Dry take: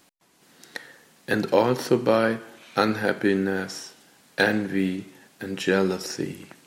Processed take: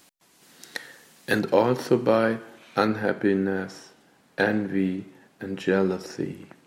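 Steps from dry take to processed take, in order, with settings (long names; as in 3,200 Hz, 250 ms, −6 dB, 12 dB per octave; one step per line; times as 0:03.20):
high-shelf EQ 2,500 Hz +4.5 dB, from 0:01.39 −5.5 dB, from 0:02.87 −11.5 dB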